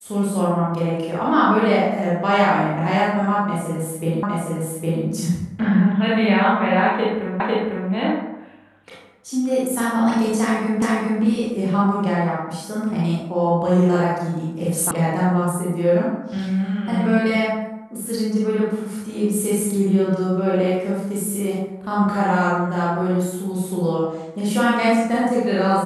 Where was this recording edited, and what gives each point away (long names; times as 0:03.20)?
0:04.23: the same again, the last 0.81 s
0:07.40: the same again, the last 0.5 s
0:10.82: the same again, the last 0.41 s
0:14.91: cut off before it has died away